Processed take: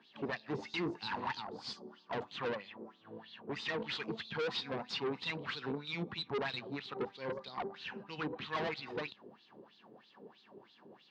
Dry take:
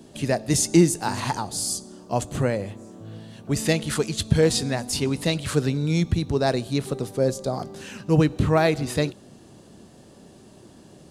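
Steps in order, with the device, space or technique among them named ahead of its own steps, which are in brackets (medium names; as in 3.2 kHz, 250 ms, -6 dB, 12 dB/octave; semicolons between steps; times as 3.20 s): wah-wah guitar rig (wah-wah 3.1 Hz 420–4000 Hz, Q 4.7; valve stage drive 39 dB, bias 0.5; cabinet simulation 97–4500 Hz, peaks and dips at 130 Hz +4 dB, 210 Hz +7 dB, 610 Hz -8 dB, 970 Hz +4 dB); trim +7 dB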